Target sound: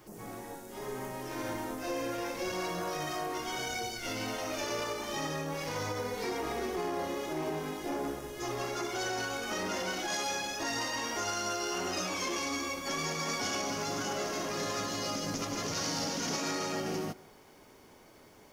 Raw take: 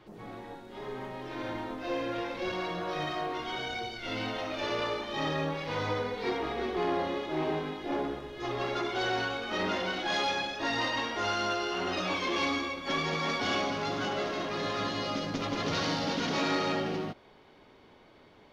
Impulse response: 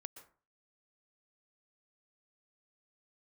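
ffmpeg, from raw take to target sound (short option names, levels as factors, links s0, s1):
-filter_complex "[0:a]alimiter=level_in=1.33:limit=0.0631:level=0:latency=1:release=127,volume=0.75,aexciter=amount=14.5:drive=2.6:freq=5600,asplit=2[s0][s1];[1:a]atrim=start_sample=2205,lowpass=5400[s2];[s1][s2]afir=irnorm=-1:irlink=0,volume=0.668[s3];[s0][s3]amix=inputs=2:normalize=0,volume=0.75"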